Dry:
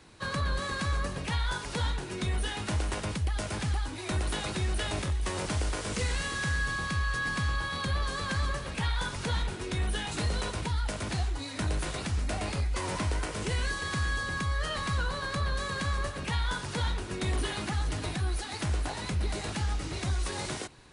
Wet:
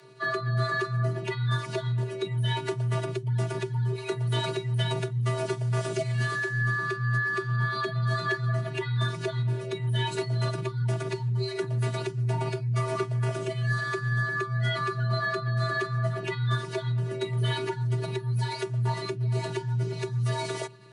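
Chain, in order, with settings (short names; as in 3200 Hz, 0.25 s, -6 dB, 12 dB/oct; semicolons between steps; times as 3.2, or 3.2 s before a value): spectral contrast raised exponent 1.6; robotiser 265 Hz; frequency shift +120 Hz; HPF 110 Hz; gain +7 dB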